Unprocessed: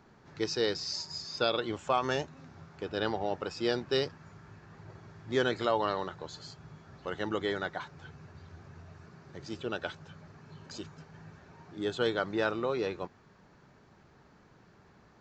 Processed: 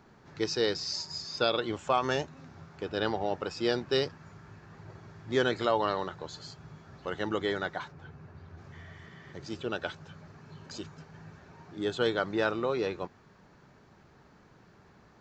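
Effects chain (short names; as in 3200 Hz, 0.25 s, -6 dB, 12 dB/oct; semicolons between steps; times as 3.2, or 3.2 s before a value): 7.91–8.57 high shelf 2600 Hz -> 4100 Hz -12 dB; 8.75–9.31 spectral repair 960–3700 Hz after; gain +1.5 dB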